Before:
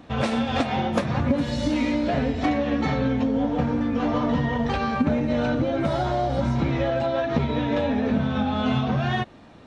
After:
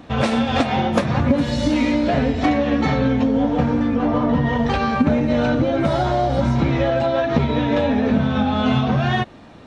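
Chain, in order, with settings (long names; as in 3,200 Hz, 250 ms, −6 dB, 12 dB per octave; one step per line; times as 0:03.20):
0:03.94–0:04.45: high-shelf EQ 2,200 Hz → 3,000 Hz −10.5 dB
level +5 dB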